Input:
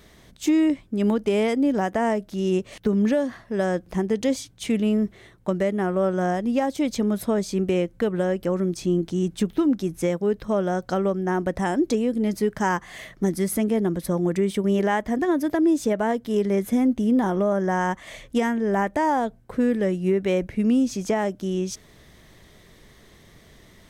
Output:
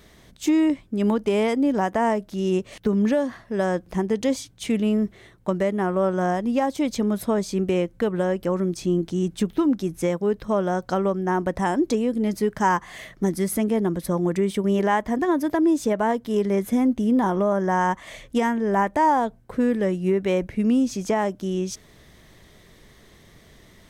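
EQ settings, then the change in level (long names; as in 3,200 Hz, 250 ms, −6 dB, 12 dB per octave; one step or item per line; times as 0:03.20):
dynamic equaliser 1,000 Hz, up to +6 dB, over −41 dBFS, Q 3.1
0.0 dB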